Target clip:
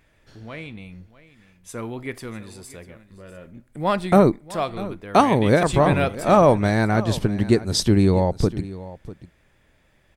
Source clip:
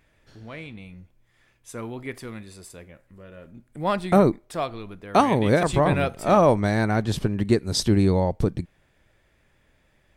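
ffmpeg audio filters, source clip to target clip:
-af "aecho=1:1:646:0.141,volume=2.5dB"

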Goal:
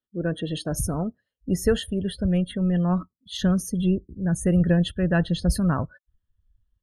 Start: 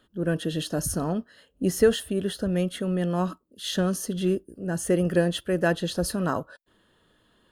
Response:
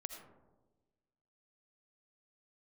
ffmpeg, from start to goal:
-af "asubboost=boost=7:cutoff=140,atempo=1.1,afftdn=nr=30:nf=-39"

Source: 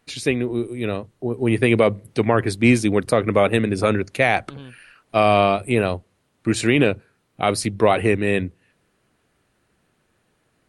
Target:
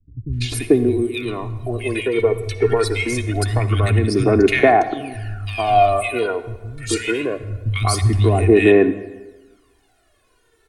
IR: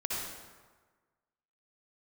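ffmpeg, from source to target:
-filter_complex "[0:a]aecho=1:1:2.8:0.72,acrossover=split=130[a][b];[b]acompressor=threshold=-21dB:ratio=4[c];[a][c]amix=inputs=2:normalize=0,aphaser=in_gain=1:out_gain=1:delay=2.3:decay=0.74:speed=0.24:type=sinusoidal,acrossover=split=160|1800[d][e][f];[f]adelay=330[g];[e]adelay=440[h];[d][h][g]amix=inputs=3:normalize=0,asplit=2[i][j];[1:a]atrim=start_sample=2205,asetrate=48510,aresample=44100[k];[j][k]afir=irnorm=-1:irlink=0,volume=-15dB[l];[i][l]amix=inputs=2:normalize=0,volume=1dB"

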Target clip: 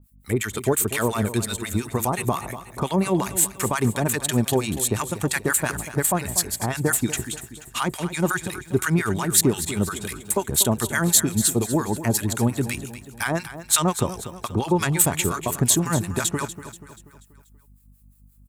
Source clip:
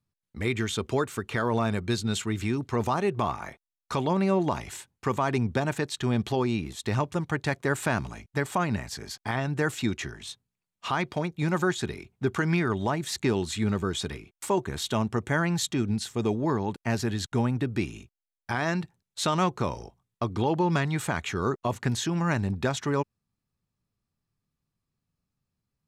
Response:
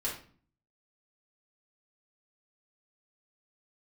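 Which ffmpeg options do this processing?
-filter_complex "[0:a]highshelf=f=4.2k:g=6,asplit=2[a][b];[b]acompressor=threshold=-37dB:ratio=6,volume=-1dB[c];[a][c]amix=inputs=2:normalize=0,atempo=1.4,aeval=exprs='val(0)+0.00178*(sin(2*PI*50*n/s)+sin(2*PI*2*50*n/s)/2+sin(2*PI*3*50*n/s)/3+sin(2*PI*4*50*n/s)/4+sin(2*PI*5*50*n/s)/5)':c=same,aexciter=amount=2.7:drive=9.6:freq=7.5k,acrossover=split=1000[d][e];[d]aeval=exprs='val(0)*(1-1/2+1/2*cos(2*PI*5.7*n/s))':c=same[f];[e]aeval=exprs='val(0)*(1-1/2-1/2*cos(2*PI*5.7*n/s))':c=same[g];[f][g]amix=inputs=2:normalize=0,aecho=1:1:241|482|723|964|1205:0.224|0.107|0.0516|0.0248|0.0119,volume=6dB"

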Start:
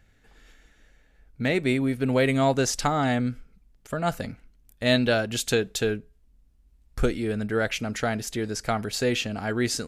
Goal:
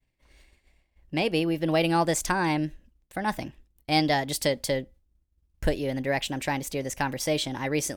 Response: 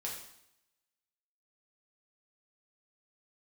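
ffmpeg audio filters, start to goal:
-af "agate=range=-33dB:threshold=-50dB:ratio=3:detection=peak,asetrate=54684,aresample=44100,volume=-1.5dB"

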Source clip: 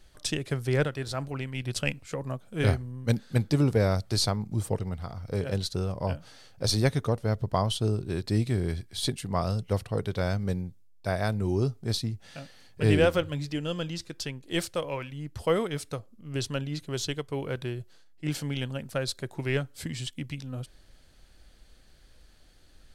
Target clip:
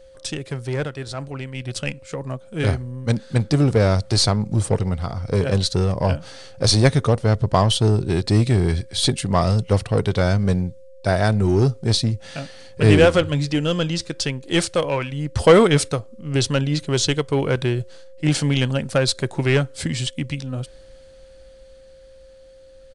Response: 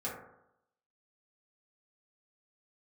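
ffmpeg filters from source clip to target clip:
-filter_complex "[0:a]asplit=2[a][b];[b]aeval=exprs='0.0473*(abs(mod(val(0)/0.0473+3,4)-2)-1)':c=same,volume=-9.5dB[c];[a][c]amix=inputs=2:normalize=0,dynaudnorm=f=500:g=13:m=11.5dB,aeval=exprs='val(0)+0.00562*sin(2*PI*530*n/s)':c=same,asplit=3[d][e][f];[d]afade=t=out:st=15.35:d=0.02[g];[e]acontrast=39,afade=t=in:st=15.35:d=0.02,afade=t=out:st=15.87:d=0.02[h];[f]afade=t=in:st=15.87:d=0.02[i];[g][h][i]amix=inputs=3:normalize=0,aresample=22050,aresample=44100"

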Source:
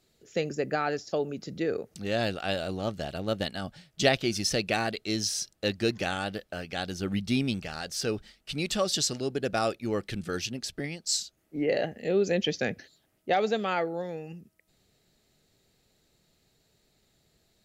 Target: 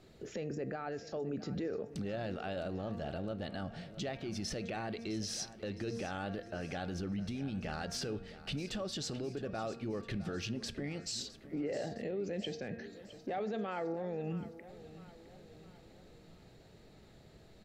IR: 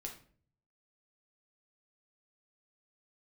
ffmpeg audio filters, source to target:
-filter_complex "[0:a]lowpass=f=1.4k:p=1,bandreject=f=231.2:t=h:w=4,bandreject=f=462.4:t=h:w=4,bandreject=f=693.6:t=h:w=4,bandreject=f=924.8:t=h:w=4,bandreject=f=1.156k:t=h:w=4,bandreject=f=1.3872k:t=h:w=4,bandreject=f=1.6184k:t=h:w=4,bandreject=f=1.8496k:t=h:w=4,bandreject=f=2.0808k:t=h:w=4,bandreject=f=2.312k:t=h:w=4,bandreject=f=2.5432k:t=h:w=4,acompressor=threshold=-44dB:ratio=4,alimiter=level_in=18.5dB:limit=-24dB:level=0:latency=1:release=28,volume=-18.5dB,aecho=1:1:661|1322|1983|2644|3305:0.168|0.0856|0.0437|0.0223|0.0114,asplit=2[a][b];[1:a]atrim=start_sample=2205,asetrate=30429,aresample=44100[c];[b][c]afir=irnorm=-1:irlink=0,volume=-13.5dB[d];[a][d]amix=inputs=2:normalize=0,volume=11dB"

